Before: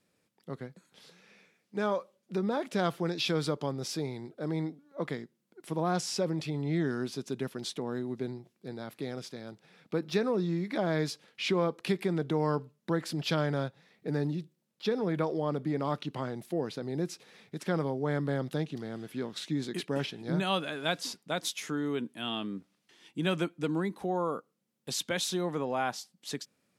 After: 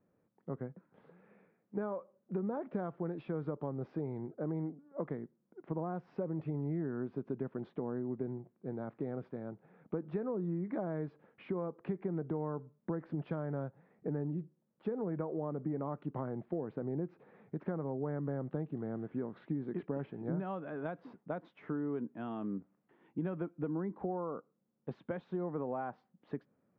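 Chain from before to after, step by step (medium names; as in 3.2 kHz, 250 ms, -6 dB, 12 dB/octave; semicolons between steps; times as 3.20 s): compression, threshold -34 dBFS, peak gain reduction 11 dB; Bessel low-pass 1 kHz, order 4; trim +1.5 dB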